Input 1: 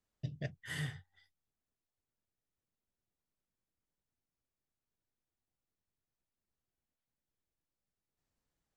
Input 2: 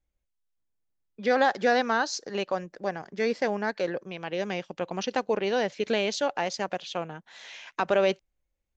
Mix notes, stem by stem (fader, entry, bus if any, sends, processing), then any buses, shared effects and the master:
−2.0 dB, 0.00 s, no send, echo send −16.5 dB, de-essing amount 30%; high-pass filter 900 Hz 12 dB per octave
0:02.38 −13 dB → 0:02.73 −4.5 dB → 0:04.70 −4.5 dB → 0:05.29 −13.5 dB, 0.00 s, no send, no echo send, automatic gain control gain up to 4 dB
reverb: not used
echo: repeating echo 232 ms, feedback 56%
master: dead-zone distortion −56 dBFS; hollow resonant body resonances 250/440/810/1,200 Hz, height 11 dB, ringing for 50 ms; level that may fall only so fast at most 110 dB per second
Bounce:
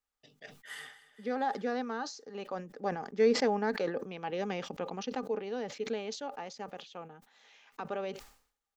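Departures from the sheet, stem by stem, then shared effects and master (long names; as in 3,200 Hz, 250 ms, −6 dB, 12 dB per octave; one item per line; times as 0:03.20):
stem 2 −13.0 dB → −20.0 dB
master: missing dead-zone distortion −56 dBFS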